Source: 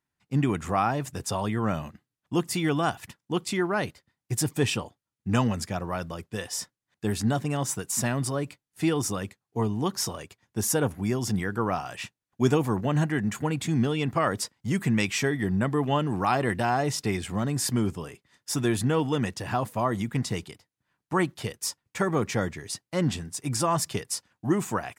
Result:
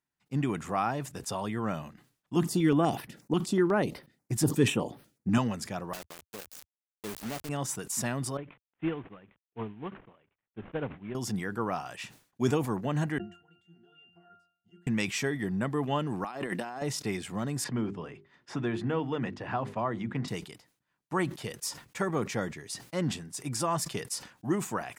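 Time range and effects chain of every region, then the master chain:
2.36–5.38 s: peaking EQ 300 Hz +8.5 dB 2.7 oct + step-sequenced notch 8.2 Hz 480–7000 Hz
5.93–7.49 s: median filter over 41 samples + RIAA curve recording + word length cut 6-bit, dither none
8.37–11.15 s: CVSD coder 16 kbps + upward expansion 2.5:1, over -36 dBFS
13.18–14.87 s: tilt EQ +3.5 dB/octave + compression 4:1, threshold -29 dBFS + pitch-class resonator F, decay 0.51 s
16.24–16.82 s: high-pass 160 Hz 24 dB/octave + compressor with a negative ratio -30 dBFS, ratio -0.5
17.64–20.28 s: low-pass 2.7 kHz + hum notches 50/100/150/200/250/300/350/400 Hz + three bands compressed up and down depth 40%
whole clip: peaking EQ 85 Hz -10 dB 0.56 oct; decay stretcher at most 140 dB/s; trim -4.5 dB

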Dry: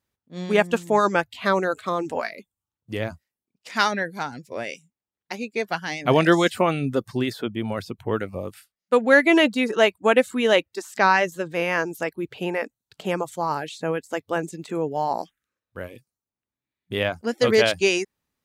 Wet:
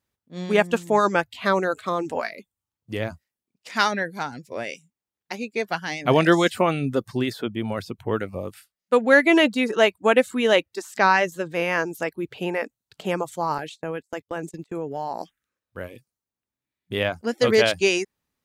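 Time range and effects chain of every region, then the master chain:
13.58–15.21 s: gate -38 dBFS, range -26 dB + compression 2.5:1, threshold -27 dBFS
whole clip: none

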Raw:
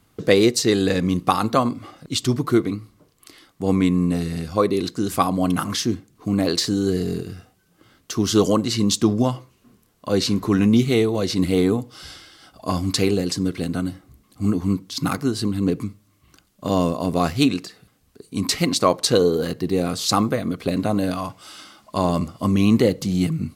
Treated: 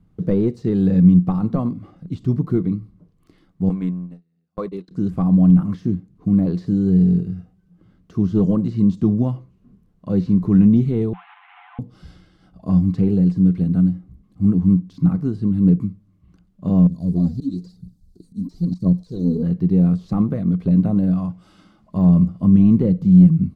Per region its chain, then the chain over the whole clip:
3.69–4.91 s: companding laws mixed up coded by mu + frequency weighting A + gate -27 dBFS, range -38 dB
11.13–11.79 s: one-bit delta coder 16 kbps, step -28.5 dBFS + brick-wall FIR high-pass 710 Hz + comb 5.9 ms, depth 44%
16.87–19.43 s: FFT filter 250 Hz 0 dB, 2.6 kHz -25 dB, 4.1 kHz +8 dB + phaser 1 Hz, delay 4.7 ms, feedback 68% + slow attack 238 ms
whole clip: peaking EQ 180 Hz +14.5 dB 0.31 oct; de-esser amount 80%; tilt EQ -4 dB/octave; trim -10 dB

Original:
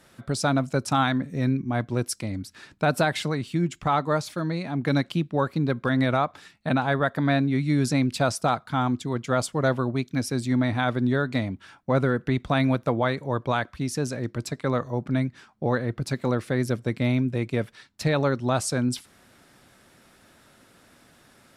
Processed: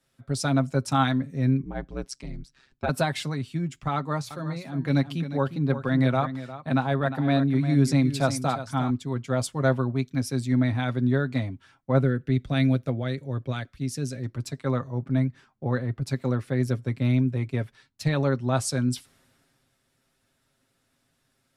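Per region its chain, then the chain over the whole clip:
1.62–2.89 s: low-pass 6.9 kHz + ring modulator 66 Hz
3.95–8.90 s: hum notches 60/120/180 Hz + delay 354 ms -10.5 dB
12.01–14.23 s: peaking EQ 970 Hz -12 dB 0.84 oct + de-esser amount 25%
whole clip: bass shelf 120 Hz +7.5 dB; comb 7.5 ms, depth 48%; three bands expanded up and down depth 40%; trim -4.5 dB

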